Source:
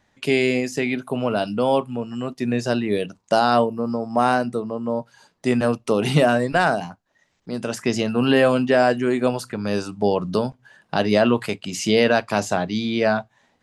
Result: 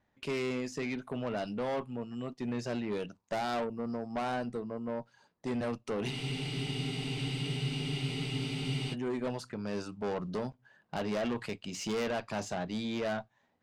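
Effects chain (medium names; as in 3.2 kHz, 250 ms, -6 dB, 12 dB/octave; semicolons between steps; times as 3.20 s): low-pass 7.1 kHz 12 dB/octave; valve stage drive 20 dB, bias 0.3; spectral freeze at 6.13 s, 2.79 s; tape noise reduction on one side only decoder only; trim -9 dB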